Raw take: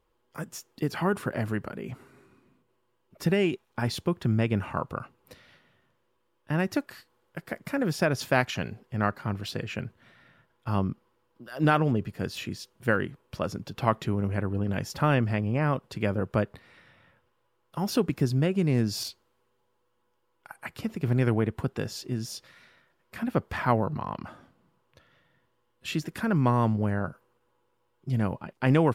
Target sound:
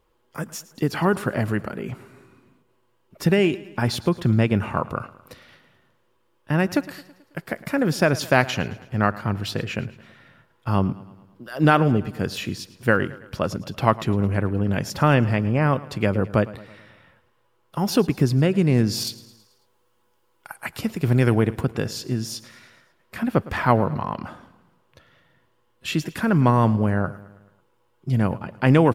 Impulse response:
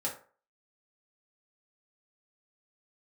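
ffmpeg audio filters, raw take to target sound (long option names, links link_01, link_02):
-filter_complex "[0:a]asettb=1/sr,asplit=3[link_01][link_02][link_03];[link_01]atrim=end=19.074[link_04];[link_02]atrim=start=19.07:end=21.61,asetpts=PTS-STARTPTS,afade=type=in:duration=0.004:curve=qsin,afade=type=out:start_time=2.536:duration=0.004:curve=qsin,highshelf=frequency=4000:gain=6.5[link_05];[link_03]atrim=start=21.606[link_06];[link_04][link_05]acrossfade=duration=0.004:curve1=hsin:curve2=qsin[link_07];[link_07][link_06]acrossfade=duration=0.004:curve1=qsin:curve2=hsin,aecho=1:1:109|218|327|436|545:0.112|0.0617|0.0339|0.0187|0.0103,volume=6dB"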